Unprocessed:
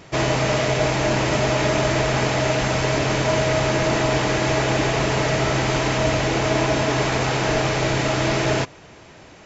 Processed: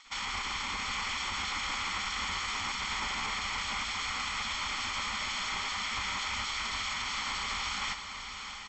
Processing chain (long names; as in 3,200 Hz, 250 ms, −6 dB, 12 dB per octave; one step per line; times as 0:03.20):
gate on every frequency bin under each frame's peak −15 dB weak
parametric band 300 Hz −5.5 dB 1 octave
comb filter 1 ms, depth 61%
brickwall limiter −23.5 dBFS, peak gain reduction 10 dB
high-frequency loss of the air 76 metres
feedback delay with all-pass diffusion 746 ms, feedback 47%, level −7.5 dB
wrong playback speed 44.1 kHz file played as 48 kHz
level −1.5 dB